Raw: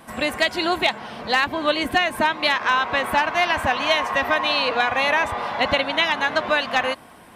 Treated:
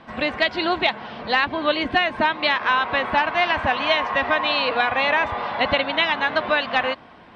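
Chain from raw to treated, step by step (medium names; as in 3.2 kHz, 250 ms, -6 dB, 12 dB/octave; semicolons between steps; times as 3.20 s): low-pass 4.4 kHz 24 dB/octave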